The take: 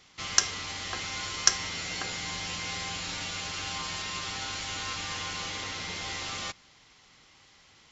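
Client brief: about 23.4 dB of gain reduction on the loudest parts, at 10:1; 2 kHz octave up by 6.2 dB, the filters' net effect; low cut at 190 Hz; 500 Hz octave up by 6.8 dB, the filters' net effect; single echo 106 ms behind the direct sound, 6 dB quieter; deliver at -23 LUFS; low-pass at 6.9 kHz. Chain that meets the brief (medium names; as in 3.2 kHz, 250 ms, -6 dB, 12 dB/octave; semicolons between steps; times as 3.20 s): high-pass 190 Hz; low-pass 6.9 kHz; peaking EQ 500 Hz +8 dB; peaking EQ 2 kHz +7 dB; compression 10:1, threshold -41 dBFS; delay 106 ms -6 dB; trim +18 dB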